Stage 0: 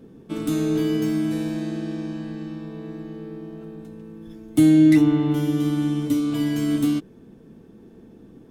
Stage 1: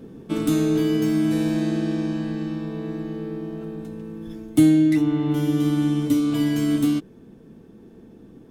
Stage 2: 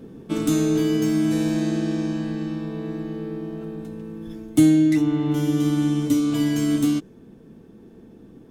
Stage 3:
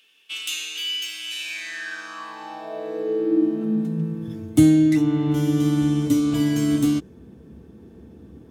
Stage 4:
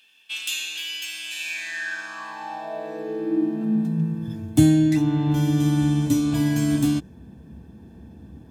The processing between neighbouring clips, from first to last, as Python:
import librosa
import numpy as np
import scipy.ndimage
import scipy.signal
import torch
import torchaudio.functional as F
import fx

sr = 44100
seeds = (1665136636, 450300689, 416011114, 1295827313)

y1 = fx.rider(x, sr, range_db=5, speed_s=0.5)
y2 = fx.dynamic_eq(y1, sr, hz=6600.0, q=2.0, threshold_db=-57.0, ratio=4.0, max_db=6)
y3 = fx.filter_sweep_highpass(y2, sr, from_hz=2800.0, to_hz=69.0, start_s=1.39, end_s=4.79, q=7.3)
y4 = y3 + 0.55 * np.pad(y3, (int(1.2 * sr / 1000.0), 0))[:len(y3)]